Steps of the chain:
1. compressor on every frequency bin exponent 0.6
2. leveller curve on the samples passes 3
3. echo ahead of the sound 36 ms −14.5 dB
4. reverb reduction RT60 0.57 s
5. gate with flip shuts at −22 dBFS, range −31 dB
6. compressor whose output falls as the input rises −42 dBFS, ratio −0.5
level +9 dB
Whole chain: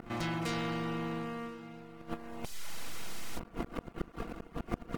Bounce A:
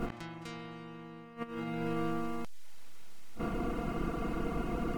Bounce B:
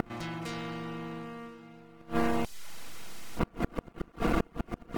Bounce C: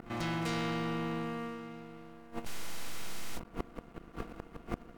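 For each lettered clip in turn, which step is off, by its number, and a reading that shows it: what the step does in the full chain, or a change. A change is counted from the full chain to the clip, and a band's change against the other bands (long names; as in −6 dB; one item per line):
2, change in crest factor −5.5 dB
6, change in momentary loudness spread +6 LU
4, change in crest factor −3.0 dB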